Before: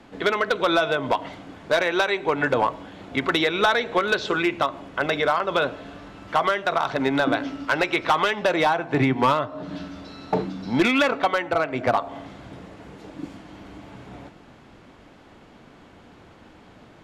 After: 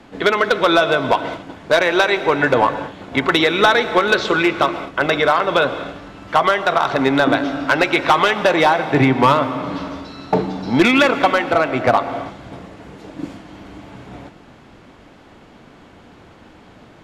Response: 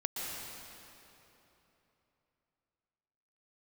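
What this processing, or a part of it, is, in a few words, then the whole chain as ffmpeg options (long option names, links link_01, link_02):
keyed gated reverb: -filter_complex "[0:a]asplit=3[link_01][link_02][link_03];[1:a]atrim=start_sample=2205[link_04];[link_02][link_04]afir=irnorm=-1:irlink=0[link_05];[link_03]apad=whole_len=751051[link_06];[link_05][link_06]sidechaingate=range=-33dB:threshold=-38dB:ratio=16:detection=peak,volume=-12dB[link_07];[link_01][link_07]amix=inputs=2:normalize=0,volume=4.5dB"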